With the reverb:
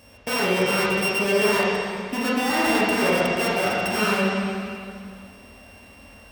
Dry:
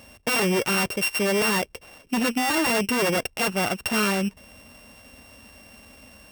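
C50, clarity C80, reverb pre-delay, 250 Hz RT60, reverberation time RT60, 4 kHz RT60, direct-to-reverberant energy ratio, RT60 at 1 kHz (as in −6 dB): −2.5 dB, −0.5 dB, 7 ms, 2.3 s, 2.3 s, 2.2 s, −6.5 dB, 2.3 s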